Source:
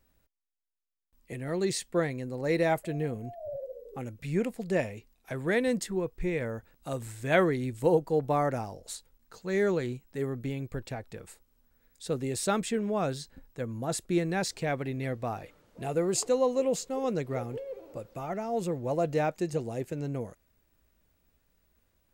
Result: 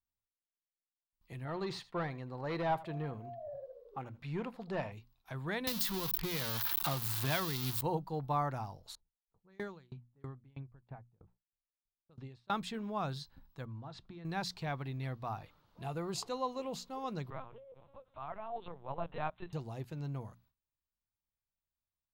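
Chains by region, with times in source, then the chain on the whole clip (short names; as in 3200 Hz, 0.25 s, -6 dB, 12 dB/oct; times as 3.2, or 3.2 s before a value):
1.45–4.92 overdrive pedal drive 15 dB, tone 1000 Hz, clips at -15 dBFS + echo 80 ms -18.5 dB
5.67–7.81 switching spikes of -19.5 dBFS + three-band squash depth 100%
8.95–12.5 low-pass opened by the level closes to 310 Hz, open at -24.5 dBFS + dB-ramp tremolo decaying 3.1 Hz, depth 30 dB
13.65–14.25 Bessel low-pass 3600 Hz, order 4 + compressor 10:1, threshold -36 dBFS
17.3–19.53 Bessel high-pass 430 Hz, order 8 + LPC vocoder at 8 kHz pitch kept
whole clip: notches 60/120/180/240 Hz; gate with hold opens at -56 dBFS; ten-band EQ 125 Hz +4 dB, 250 Hz -4 dB, 500 Hz -10 dB, 1000 Hz +8 dB, 2000 Hz -6 dB, 4000 Hz +7 dB, 8000 Hz -12 dB; gain -5.5 dB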